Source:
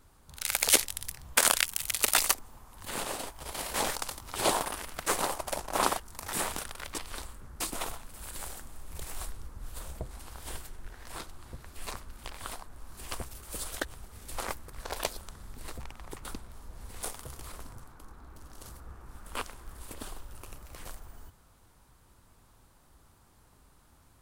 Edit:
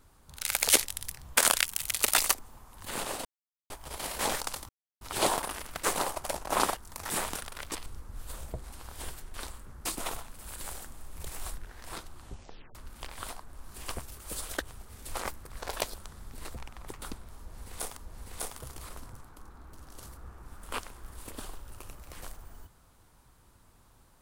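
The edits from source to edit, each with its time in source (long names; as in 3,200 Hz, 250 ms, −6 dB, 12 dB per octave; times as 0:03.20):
0:03.25: splice in silence 0.45 s
0:04.24: splice in silence 0.32 s
0:09.33–0:10.81: move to 0:07.09
0:11.43: tape stop 0.55 s
0:16.60–0:17.20: repeat, 2 plays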